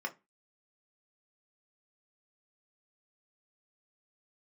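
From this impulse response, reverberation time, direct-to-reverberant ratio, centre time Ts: 0.25 s, 1.5 dB, 7 ms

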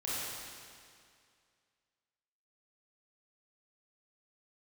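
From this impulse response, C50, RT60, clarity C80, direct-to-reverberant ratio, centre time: -5.0 dB, 2.2 s, -2.5 dB, -9.5 dB, 0.164 s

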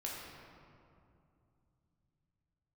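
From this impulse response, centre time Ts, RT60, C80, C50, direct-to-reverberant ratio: 0.117 s, 2.6 s, 1.0 dB, -0.5 dB, -4.0 dB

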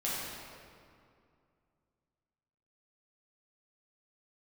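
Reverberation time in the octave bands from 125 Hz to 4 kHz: 3.0, 2.7, 2.4, 2.3, 1.9, 1.5 s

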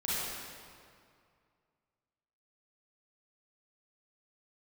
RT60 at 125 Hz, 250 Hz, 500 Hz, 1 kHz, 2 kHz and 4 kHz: 2.6, 2.3, 2.3, 2.3, 1.9, 1.6 s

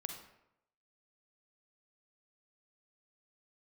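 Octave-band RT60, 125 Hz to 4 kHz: 0.85, 0.80, 0.85, 0.80, 0.70, 0.55 s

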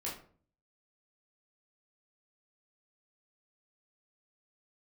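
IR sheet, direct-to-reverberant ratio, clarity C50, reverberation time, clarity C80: -6.0 dB, 6.0 dB, 0.45 s, 11.5 dB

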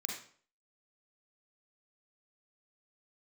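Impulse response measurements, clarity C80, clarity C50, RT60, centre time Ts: 7.5 dB, 3.0 dB, 0.50 s, 38 ms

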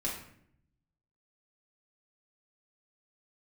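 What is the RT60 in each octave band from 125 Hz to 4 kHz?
1.3, 1.0, 0.75, 0.60, 0.60, 0.45 s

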